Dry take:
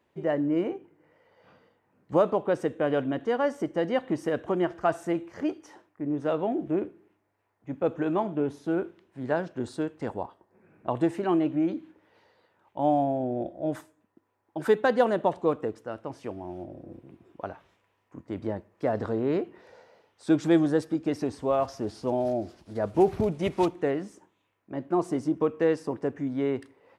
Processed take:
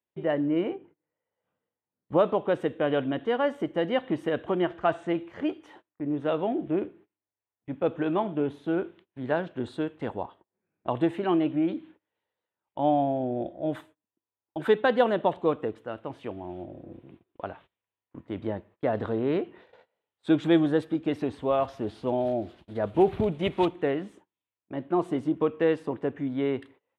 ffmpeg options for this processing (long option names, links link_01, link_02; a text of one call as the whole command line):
ffmpeg -i in.wav -filter_complex "[0:a]asettb=1/sr,asplit=3[link_01][link_02][link_03];[link_01]atrim=end=0.754[link_04];[link_02]atrim=start=0.75:end=2.19,asetpts=PTS-STARTPTS,afade=type=in:duration=0.004:curve=qsin,afade=type=out:start_time=1.436:duration=0.004:curve=qsin,highshelf=frequency=2500:gain=-8.5[link_05];[link_03]atrim=start=2.186[link_06];[link_04][link_05]acrossfade=duration=0.004:curve1=hsin:curve2=qsin[link_07];[link_07][link_06]acrossfade=duration=0.004:curve1=qsin:curve2=hsin,asettb=1/sr,asplit=3[link_08][link_09][link_10];[link_08]atrim=end=4.724[link_11];[link_09]atrim=start=4.72:end=5.24,asetpts=PTS-STARTPTS,afade=type=in:duration=0.004:curve=qsin,afade=type=out:start_time=0.516:duration=0.004:curve=qsin,lowpass=frequency=8000:width=0.5412,lowpass=frequency=8000:width=1.3066[link_12];[link_10]atrim=start=5.236[link_13];[link_11][link_12]acrossfade=duration=0.004:curve1=hsin:curve2=qsin[link_14];[link_14][link_13]acrossfade=duration=0.004:curve1=qsin:curve2=hsin,agate=range=-24dB:threshold=-51dB:ratio=16:detection=peak,highshelf=frequency=4300:width_type=q:width=3:gain=-7.5" out.wav